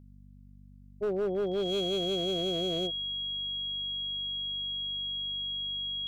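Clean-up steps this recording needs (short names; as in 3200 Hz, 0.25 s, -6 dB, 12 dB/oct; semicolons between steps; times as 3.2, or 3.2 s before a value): clip repair -25.5 dBFS; de-hum 48.7 Hz, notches 5; notch 3300 Hz, Q 30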